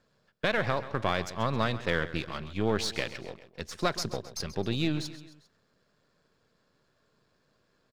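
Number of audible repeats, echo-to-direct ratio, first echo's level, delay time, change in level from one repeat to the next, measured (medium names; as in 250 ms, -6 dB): 3, -13.5 dB, -15.0 dB, 133 ms, -5.5 dB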